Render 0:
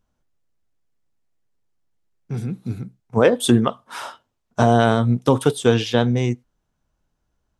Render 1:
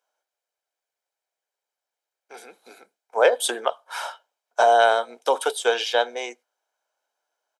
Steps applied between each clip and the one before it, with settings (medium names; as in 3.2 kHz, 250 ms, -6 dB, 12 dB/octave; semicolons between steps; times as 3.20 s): steep high-pass 420 Hz 36 dB/octave; comb 1.3 ms, depth 45%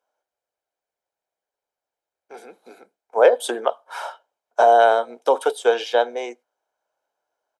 tilt shelf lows +6 dB, about 1.2 kHz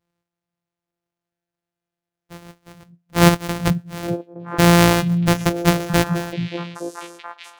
sorted samples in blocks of 256 samples; repeats whose band climbs or falls 433 ms, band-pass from 160 Hz, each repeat 1.4 oct, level -4 dB; trim +1 dB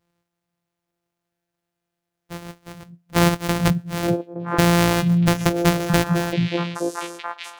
compression 4:1, threshold -20 dBFS, peak gain reduction 11 dB; trim +5 dB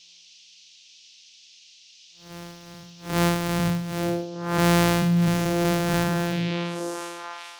spectral blur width 168 ms; band noise 2.6–6.2 kHz -50 dBFS; trim -2 dB